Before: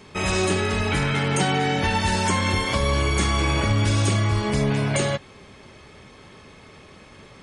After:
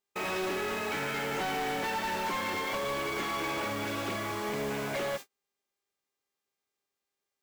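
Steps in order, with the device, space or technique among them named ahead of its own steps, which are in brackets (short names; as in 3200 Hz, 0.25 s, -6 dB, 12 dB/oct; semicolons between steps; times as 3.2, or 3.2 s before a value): aircraft radio (BPF 320–2600 Hz; hard clip -25 dBFS, distortion -11 dB; buzz 400 Hz, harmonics 20, -46 dBFS -1 dB/oct; white noise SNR 15 dB; gate -34 dBFS, range -42 dB); 0.99–1.39 notch 1100 Hz, Q 9.1; gain -4.5 dB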